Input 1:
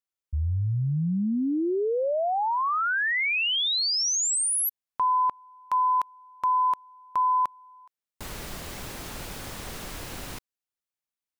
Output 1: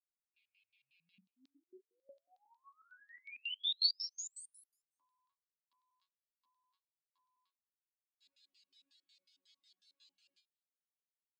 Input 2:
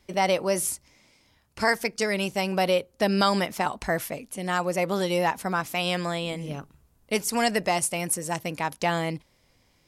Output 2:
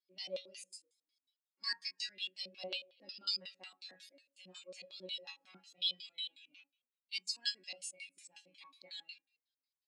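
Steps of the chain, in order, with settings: rattle on loud lows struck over -38 dBFS, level -29 dBFS; chord resonator F#3 fifth, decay 0.43 s; on a send: frequency-shifting echo 257 ms, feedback 34%, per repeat -39 Hz, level -21 dB; on the sum: reverb removal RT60 0.52 s; band-stop 5.8 kHz, Q 6.7; gated-style reverb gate 250 ms falling, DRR 11.5 dB; LFO band-pass square 5.5 Hz 260–4100 Hz; frequency weighting ITU-R 468; spectral contrast expander 1.5:1; trim +2.5 dB

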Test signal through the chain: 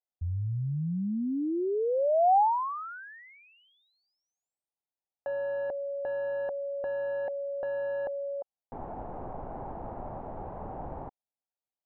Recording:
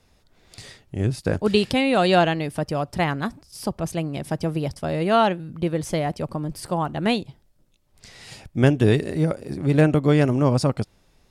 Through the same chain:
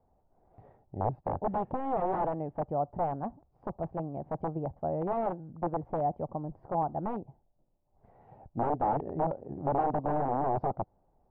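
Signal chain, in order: integer overflow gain 14.5 dB; four-pole ladder low-pass 890 Hz, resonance 60%

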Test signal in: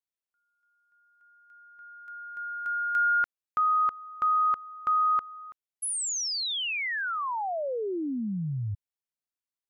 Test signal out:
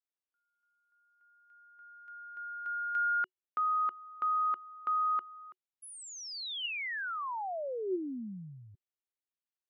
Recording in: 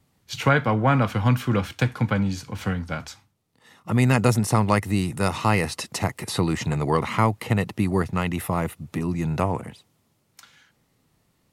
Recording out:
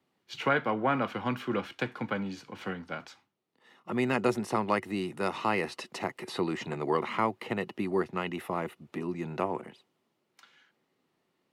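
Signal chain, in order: three-band isolator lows -23 dB, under 190 Hz, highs -12 dB, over 4.4 kHz; small resonant body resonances 370/2900 Hz, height 8 dB, ringing for 100 ms; trim -6 dB

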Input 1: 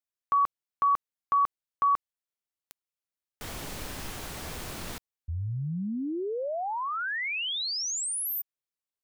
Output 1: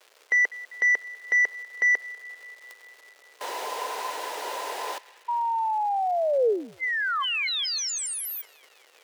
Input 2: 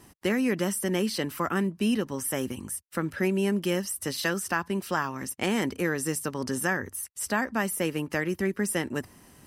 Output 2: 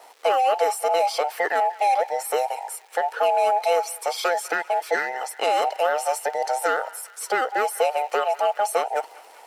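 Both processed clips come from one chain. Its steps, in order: every band turned upside down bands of 1 kHz; crackle 500 per s -45 dBFS; overdrive pedal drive 11 dB, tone 5.3 kHz, clips at -11.5 dBFS; resonant high-pass 450 Hz, resonance Q 3.4; on a send: band-passed feedback delay 197 ms, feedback 72%, band-pass 2.2 kHz, level -18.5 dB; on the sum: trim -1.5 dB

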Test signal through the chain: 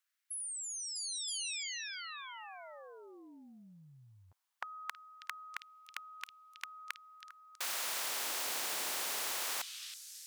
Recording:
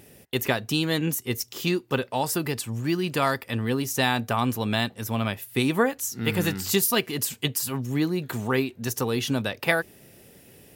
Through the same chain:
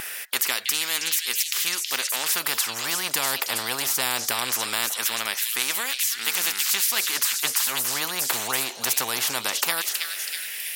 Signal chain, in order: repeats whose band climbs or falls 323 ms, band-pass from 4 kHz, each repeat 0.7 oct, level -7 dB; LFO high-pass sine 0.2 Hz 790–2500 Hz; spectrum-flattening compressor 4:1

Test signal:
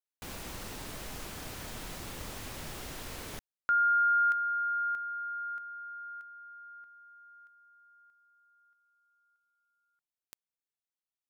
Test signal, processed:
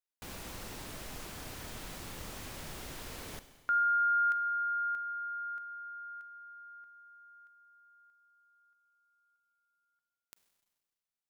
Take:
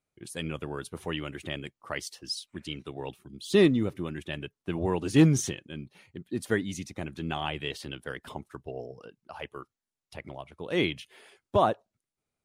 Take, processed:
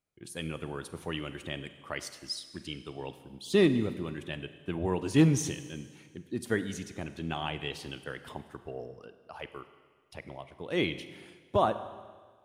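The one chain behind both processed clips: Schroeder reverb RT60 1.6 s, combs from 33 ms, DRR 11.5 dB; trim -2.5 dB

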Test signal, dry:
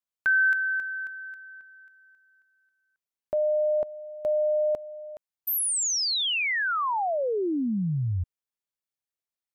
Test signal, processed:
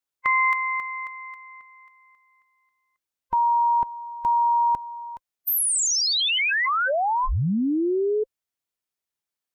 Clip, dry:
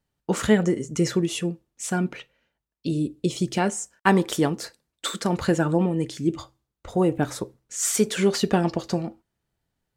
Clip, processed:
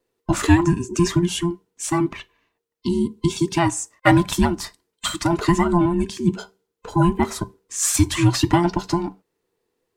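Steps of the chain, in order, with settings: every band turned upside down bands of 500 Hz; trim +4 dB

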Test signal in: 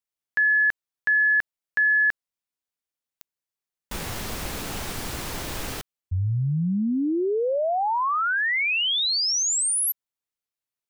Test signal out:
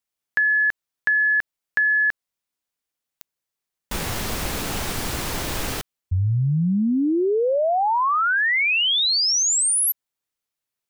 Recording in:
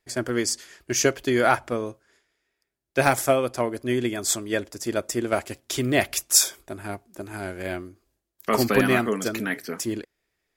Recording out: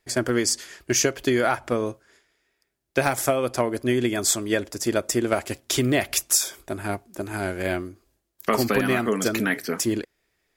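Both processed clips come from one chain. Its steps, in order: compression 12:1, threshold -22 dBFS; trim +5 dB

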